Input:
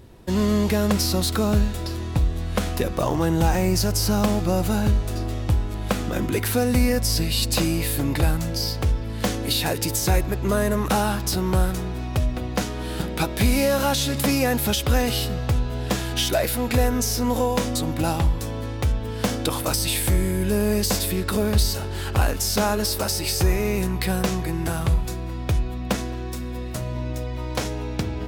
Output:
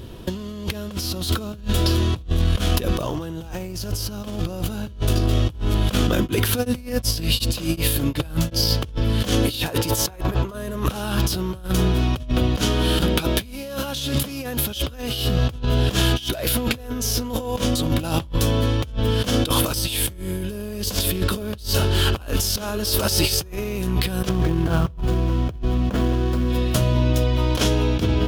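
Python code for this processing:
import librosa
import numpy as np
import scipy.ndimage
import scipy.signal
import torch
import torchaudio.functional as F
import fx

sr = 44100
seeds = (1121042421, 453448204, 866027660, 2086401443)

y = fx.tremolo_abs(x, sr, hz=2.7, at=(6.1, 8.84))
y = fx.peak_eq(y, sr, hz=940.0, db=9.0, octaves=1.7, at=(9.67, 10.53), fade=0.02)
y = fx.median_filter(y, sr, points=15, at=(24.29, 26.5))
y = fx.graphic_eq_31(y, sr, hz=(800, 2000, 3150, 8000), db=(-6, -6, 8, -4))
y = fx.over_compress(y, sr, threshold_db=-27.0, ratio=-0.5)
y = F.gain(torch.from_numpy(y), 5.5).numpy()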